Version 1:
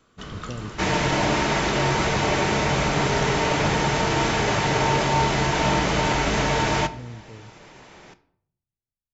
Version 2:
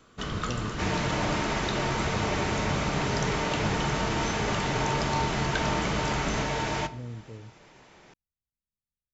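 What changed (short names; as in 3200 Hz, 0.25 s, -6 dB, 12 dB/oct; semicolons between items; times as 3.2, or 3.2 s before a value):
speech: send off; first sound +4.0 dB; second sound -7.5 dB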